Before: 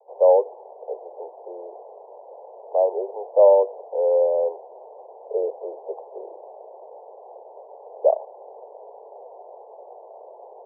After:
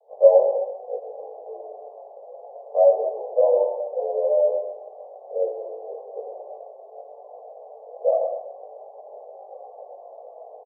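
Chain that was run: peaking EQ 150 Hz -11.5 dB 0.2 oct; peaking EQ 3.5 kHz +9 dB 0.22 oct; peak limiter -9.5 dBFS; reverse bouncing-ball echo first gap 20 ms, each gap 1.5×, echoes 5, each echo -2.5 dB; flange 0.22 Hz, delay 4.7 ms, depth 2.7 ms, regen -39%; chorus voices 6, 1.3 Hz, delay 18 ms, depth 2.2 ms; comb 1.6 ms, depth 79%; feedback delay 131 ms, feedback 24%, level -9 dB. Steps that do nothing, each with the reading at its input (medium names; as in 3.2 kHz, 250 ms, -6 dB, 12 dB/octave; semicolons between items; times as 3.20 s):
peaking EQ 150 Hz: input has nothing below 340 Hz; peaking EQ 3.5 kHz: input has nothing above 1 kHz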